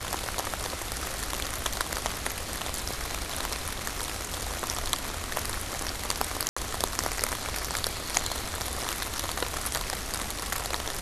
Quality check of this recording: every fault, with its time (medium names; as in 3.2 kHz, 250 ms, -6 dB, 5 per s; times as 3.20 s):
6.49–6.57 s: dropout 75 ms